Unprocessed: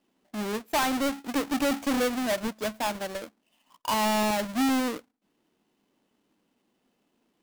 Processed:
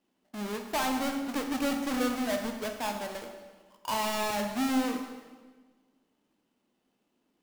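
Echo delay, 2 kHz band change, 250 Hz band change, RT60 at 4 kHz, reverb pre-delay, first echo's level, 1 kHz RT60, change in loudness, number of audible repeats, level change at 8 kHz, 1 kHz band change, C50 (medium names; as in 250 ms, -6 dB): no echo, -3.5 dB, -3.0 dB, 1.2 s, 12 ms, no echo, 1.4 s, -3.5 dB, no echo, -3.5 dB, -3.5 dB, 6.0 dB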